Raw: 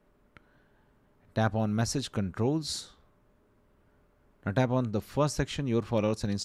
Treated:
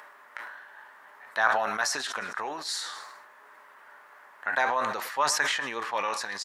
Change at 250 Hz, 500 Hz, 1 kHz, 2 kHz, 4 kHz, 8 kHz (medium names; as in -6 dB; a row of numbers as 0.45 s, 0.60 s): -16.0 dB, -3.5 dB, +9.0 dB, +13.5 dB, +6.0 dB, +6.5 dB